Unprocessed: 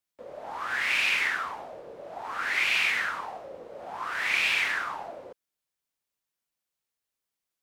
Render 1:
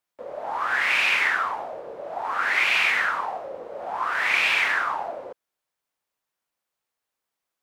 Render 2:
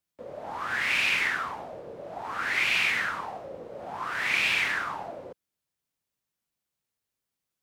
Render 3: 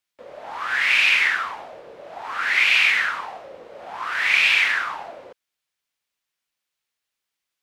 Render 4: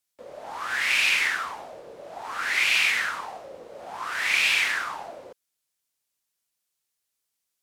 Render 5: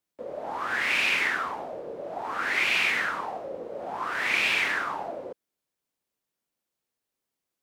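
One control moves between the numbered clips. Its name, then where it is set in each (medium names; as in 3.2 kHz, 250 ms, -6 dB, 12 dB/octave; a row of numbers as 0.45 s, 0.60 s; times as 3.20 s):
peaking EQ, frequency: 880 Hz, 120 Hz, 2.6 kHz, 9.2 kHz, 300 Hz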